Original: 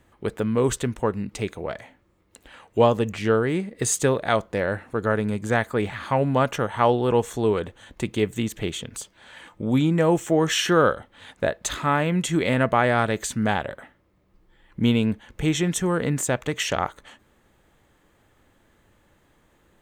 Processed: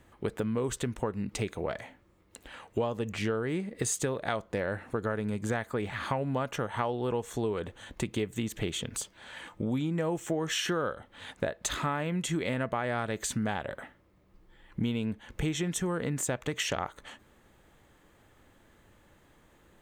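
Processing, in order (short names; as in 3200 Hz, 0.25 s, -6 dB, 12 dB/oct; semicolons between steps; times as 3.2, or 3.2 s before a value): compressor 6:1, threshold -28 dBFS, peak gain reduction 15 dB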